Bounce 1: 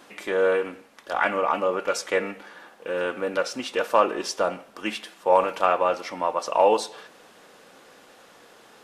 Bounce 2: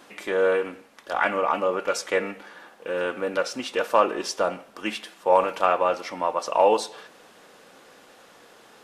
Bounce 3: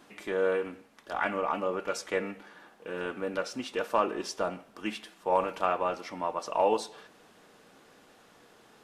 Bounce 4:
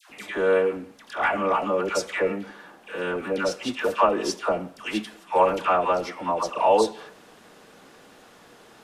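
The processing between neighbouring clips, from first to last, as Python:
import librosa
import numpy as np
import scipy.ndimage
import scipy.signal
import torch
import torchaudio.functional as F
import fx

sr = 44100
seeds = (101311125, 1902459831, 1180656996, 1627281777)

y1 = x
y2 = fx.low_shelf(y1, sr, hz=270.0, db=8.5)
y2 = fx.notch(y2, sr, hz=530.0, q=12.0)
y2 = F.gain(torch.from_numpy(y2), -7.5).numpy()
y3 = fx.dispersion(y2, sr, late='lows', ms=103.0, hz=960.0)
y3 = F.gain(torch.from_numpy(y3), 7.0).numpy()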